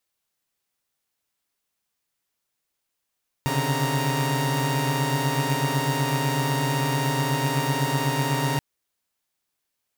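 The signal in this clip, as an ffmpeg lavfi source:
-f lavfi -i "aevalsrc='0.0562*((2*mod(130.81*t,1)-1)+(2*mod(138.59*t,1)-1)+(2*mod(146.83*t,1)-1)+(2*mod(932.33*t,1)-1))':d=5.13:s=44100"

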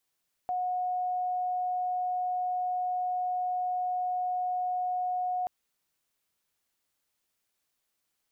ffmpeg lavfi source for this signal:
-f lavfi -i "aevalsrc='0.0422*sin(2*PI*728*t)':d=4.98:s=44100"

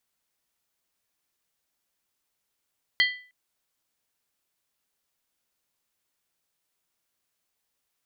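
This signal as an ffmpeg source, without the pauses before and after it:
-f lavfi -i "aevalsrc='0.15*pow(10,-3*t/0.42)*sin(2*PI*1990*t)+0.0944*pow(10,-3*t/0.333)*sin(2*PI*3172.1*t)+0.0596*pow(10,-3*t/0.287)*sin(2*PI*4250.6*t)+0.0376*pow(10,-3*t/0.277)*sin(2*PI*4569*t)':d=0.31:s=44100"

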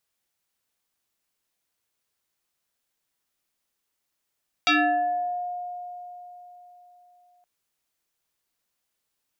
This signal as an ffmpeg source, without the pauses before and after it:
-f lavfi -i "aevalsrc='0.158*pow(10,-3*t/3.87)*sin(2*PI*714*t+4*pow(10,-3*t/0.86)*sin(2*PI*1.42*714*t))':d=2.77:s=44100"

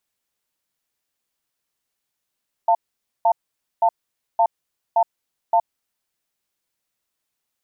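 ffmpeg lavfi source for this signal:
-f lavfi -i "aevalsrc='0.168*(sin(2*PI*692*t)+sin(2*PI*897*t))*clip(min(mod(t,0.57),0.07-mod(t,0.57))/0.005,0,1)':d=2.99:s=44100"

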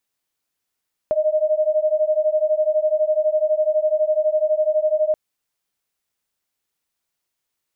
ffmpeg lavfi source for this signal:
-f lavfi -i "aevalsrc='0.112*(sin(2*PI*611*t)+sin(2*PI*623*t))':d=4.03:s=44100"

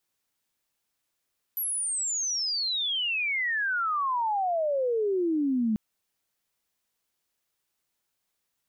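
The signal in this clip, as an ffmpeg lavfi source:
-f lavfi -i "aevalsrc='pow(10,(-27+4.5*t/4.19)/20)*sin(2*PI*12000*4.19/log(210/12000)*(exp(log(210/12000)*t/4.19)-1))':d=4.19:s=44100"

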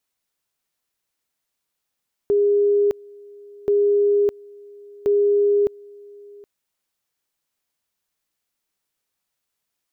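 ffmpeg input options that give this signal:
-f lavfi -i "aevalsrc='pow(10,(-14-25.5*gte(mod(t,1.38),0.61))/20)*sin(2*PI*408*t)':d=4.14:s=44100"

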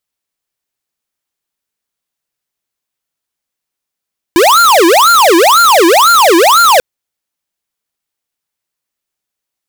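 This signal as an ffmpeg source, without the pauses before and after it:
-f lavfi -i "aevalsrc='0.501*(2*lt(mod((864*t-536/(2*PI*2)*sin(2*PI*2*t)),1),0.5)-1)':d=2.44:s=44100"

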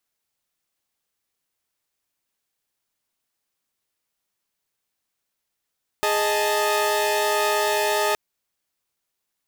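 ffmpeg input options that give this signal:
-f lavfi -i "aevalsrc='0.0841*((2*mod(415.3*t,1)-1)+(2*mod(622.25*t,1)-1)+(2*mod(880*t,1)-1))':d=2.12:s=44100"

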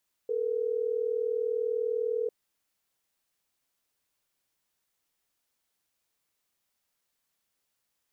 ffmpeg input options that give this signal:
-f lavfi -i "aevalsrc='0.0335*(sin(2*PI*440*t)+sin(2*PI*480*t))*clip(min(mod(t,6),2-mod(t,6))/0.005,0,1)':d=3.12:s=44100"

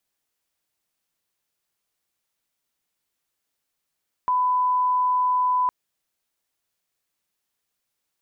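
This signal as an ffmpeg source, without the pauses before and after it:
-f lavfi -i "sine=f=1000:d=1.41:r=44100,volume=0.06dB"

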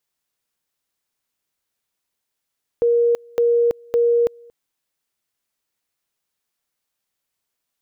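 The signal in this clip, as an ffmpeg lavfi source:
-f lavfi -i "aevalsrc='pow(10,(-13-28.5*gte(mod(t,0.56),0.33))/20)*sin(2*PI*472*t)':d=1.68:s=44100"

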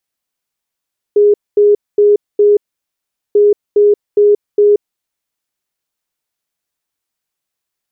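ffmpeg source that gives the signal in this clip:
-f lavfi -i "aevalsrc='0.562*sin(2*PI*413*t)*clip(min(mod(mod(t,2.19),0.41),0.18-mod(mod(t,2.19),0.41))/0.005,0,1)*lt(mod(t,2.19),1.64)':d=4.38:s=44100"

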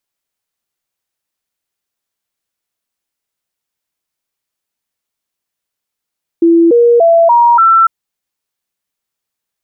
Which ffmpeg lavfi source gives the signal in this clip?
-f lavfi -i "aevalsrc='0.631*clip(min(mod(t,0.29),0.29-mod(t,0.29))/0.005,0,1)*sin(2*PI*335*pow(2,floor(t/0.29)/2)*mod(t,0.29))':d=1.45:s=44100"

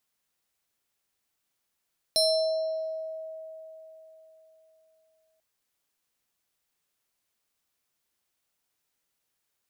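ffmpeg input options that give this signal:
-f lavfi -i "aevalsrc='0.112*pow(10,-3*t/3.83)*sin(2*PI*639*t+1.7*pow(10,-3*t/1.25)*sin(2*PI*7.45*639*t))':d=3.24:s=44100"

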